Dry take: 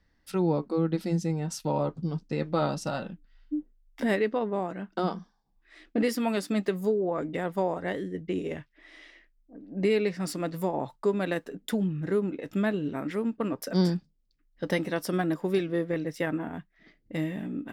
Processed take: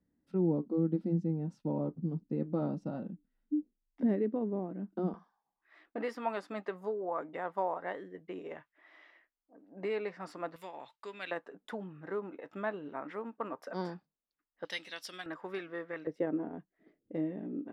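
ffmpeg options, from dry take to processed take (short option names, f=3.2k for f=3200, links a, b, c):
-af "asetnsamples=n=441:p=0,asendcmd='5.14 bandpass f 990;10.56 bandpass f 2700;11.31 bandpass f 970;14.65 bandpass f 3600;15.26 bandpass f 1300;16.07 bandpass f 410',bandpass=f=250:t=q:w=1.5:csg=0"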